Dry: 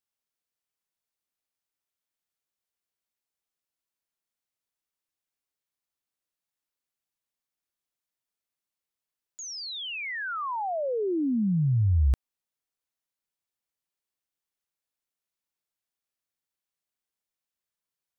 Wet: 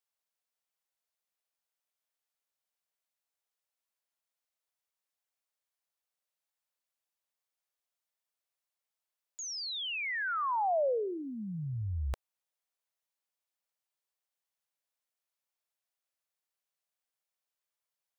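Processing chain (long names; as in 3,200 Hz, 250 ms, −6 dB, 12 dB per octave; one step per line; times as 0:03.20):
low shelf with overshoot 400 Hz −10.5 dB, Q 1.5
0:09.98–0:12.07: echo with shifted repeats 149 ms, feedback 37%, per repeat −71 Hz, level −23.5 dB
level −1.5 dB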